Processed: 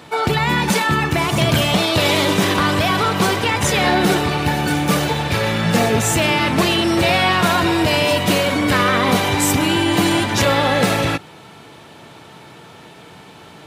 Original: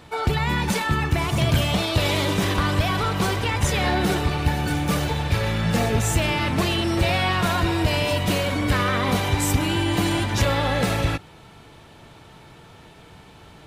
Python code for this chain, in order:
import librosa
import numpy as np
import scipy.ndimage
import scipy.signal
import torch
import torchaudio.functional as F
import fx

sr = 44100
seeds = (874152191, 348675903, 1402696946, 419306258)

y = scipy.signal.sosfilt(scipy.signal.butter(2, 150.0, 'highpass', fs=sr, output='sos'), x)
y = y * 10.0 ** (7.0 / 20.0)